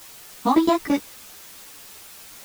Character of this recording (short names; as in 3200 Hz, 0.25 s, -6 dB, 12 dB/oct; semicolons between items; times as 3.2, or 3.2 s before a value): tremolo saw down 8.9 Hz, depth 95%; a quantiser's noise floor 8-bit, dither triangular; a shimmering, thickened sound